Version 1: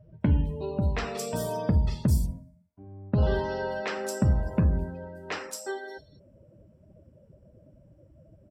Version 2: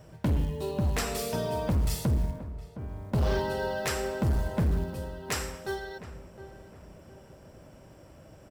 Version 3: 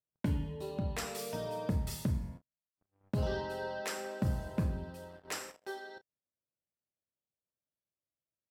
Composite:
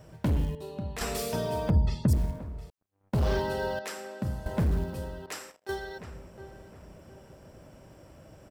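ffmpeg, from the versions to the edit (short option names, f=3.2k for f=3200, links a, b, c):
-filter_complex "[2:a]asplit=4[a][b][c][d];[1:a]asplit=6[e][f][g][h][i][j];[e]atrim=end=0.552[k];[a]atrim=start=0.548:end=1.012[l];[f]atrim=start=1.008:end=1.702[m];[0:a]atrim=start=1.698:end=2.132[n];[g]atrim=start=2.128:end=2.702[o];[b]atrim=start=2.698:end=3.132[p];[h]atrim=start=3.128:end=3.792[q];[c]atrim=start=3.788:end=4.462[r];[i]atrim=start=4.458:end=5.262[s];[d]atrim=start=5.258:end=5.692[t];[j]atrim=start=5.688[u];[k][l]acrossfade=d=0.004:c1=hsin:c2=hsin[v];[v][m]acrossfade=d=0.004:c1=hsin:c2=hsin[w];[w][n]acrossfade=d=0.004:c1=hsin:c2=hsin[x];[x][o]acrossfade=d=0.004:c1=hsin:c2=hsin[y];[y][p]acrossfade=d=0.004:c1=hsin:c2=hsin[z];[z][q]acrossfade=d=0.004:c1=hsin:c2=hsin[aa];[aa][r]acrossfade=d=0.004:c1=hsin:c2=hsin[ab];[ab][s]acrossfade=d=0.004:c1=hsin:c2=hsin[ac];[ac][t]acrossfade=d=0.004:c1=hsin:c2=hsin[ad];[ad][u]acrossfade=d=0.004:c1=hsin:c2=hsin"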